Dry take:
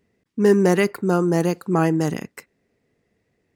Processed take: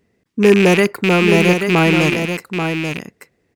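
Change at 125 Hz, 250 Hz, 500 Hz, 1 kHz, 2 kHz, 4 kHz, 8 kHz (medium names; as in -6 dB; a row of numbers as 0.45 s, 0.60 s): +5.5 dB, +5.5 dB, +5.5 dB, +5.5 dB, +13.5 dB, +16.0 dB, +6.0 dB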